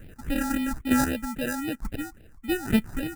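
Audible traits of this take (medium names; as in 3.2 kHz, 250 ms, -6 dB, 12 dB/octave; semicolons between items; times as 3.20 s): chopped level 1.1 Hz, depth 65%, duty 15%; aliases and images of a low sample rate 1.1 kHz, jitter 0%; phasing stages 4, 3.7 Hz, lowest notch 470–1100 Hz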